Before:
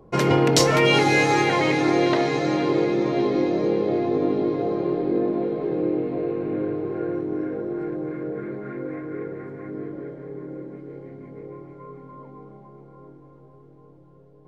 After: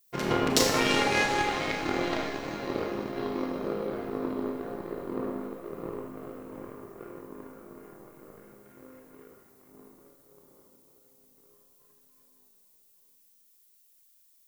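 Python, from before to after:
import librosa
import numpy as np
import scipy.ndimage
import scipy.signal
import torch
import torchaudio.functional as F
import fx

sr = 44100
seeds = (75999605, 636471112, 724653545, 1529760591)

y = fx.power_curve(x, sr, exponent=2.0)
y = fx.dmg_noise_colour(y, sr, seeds[0], colour='violet', level_db=-65.0)
y = fx.rev_schroeder(y, sr, rt60_s=0.88, comb_ms=27, drr_db=1.5)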